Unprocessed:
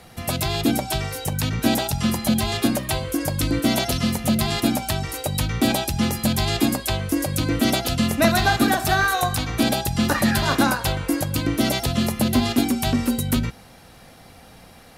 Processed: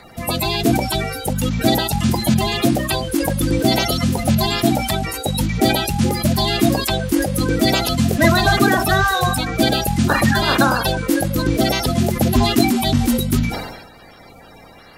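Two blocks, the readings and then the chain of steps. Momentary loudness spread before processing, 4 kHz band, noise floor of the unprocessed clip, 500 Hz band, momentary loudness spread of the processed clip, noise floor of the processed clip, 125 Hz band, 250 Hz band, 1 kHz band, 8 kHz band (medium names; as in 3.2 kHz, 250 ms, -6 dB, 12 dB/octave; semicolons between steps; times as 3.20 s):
6 LU, +4.5 dB, -47 dBFS, +5.5 dB, 6 LU, -43 dBFS, +5.0 dB, +3.5 dB, +4.5 dB, +2.0 dB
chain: coarse spectral quantiser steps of 30 dB; decay stretcher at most 55 dB/s; trim +4 dB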